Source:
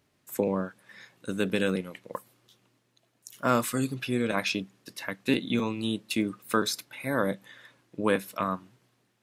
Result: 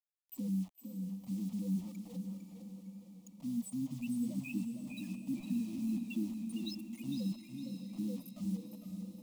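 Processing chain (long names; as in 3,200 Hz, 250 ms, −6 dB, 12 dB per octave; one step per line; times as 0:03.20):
reverb reduction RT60 0.5 s
guitar amp tone stack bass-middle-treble 10-0-1
brickwall limiter −41.5 dBFS, peak gain reduction 10 dB
spectral peaks only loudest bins 4
bit reduction 12 bits
phaser with its sweep stopped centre 420 Hz, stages 6
feedback delay with all-pass diffusion 580 ms, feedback 53%, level −9 dB
feedback echo with a swinging delay time 456 ms, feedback 35%, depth 76 cents, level −8 dB
level +17.5 dB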